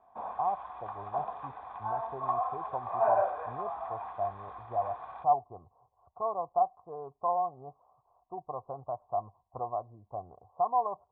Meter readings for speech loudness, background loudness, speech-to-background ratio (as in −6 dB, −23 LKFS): −35.0 LKFS, −35.0 LKFS, 0.0 dB